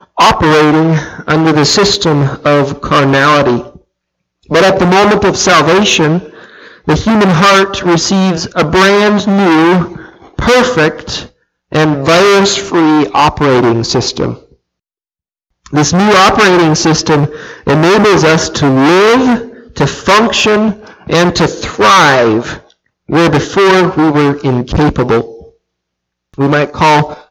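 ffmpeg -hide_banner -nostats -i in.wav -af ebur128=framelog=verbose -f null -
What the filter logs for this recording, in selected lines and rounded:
Integrated loudness:
  I:          -8.9 LUFS
  Threshold: -19.5 LUFS
Loudness range:
  LRA:         2.8 LU
  Threshold: -29.7 LUFS
  LRA low:   -11.2 LUFS
  LRA high:   -8.4 LUFS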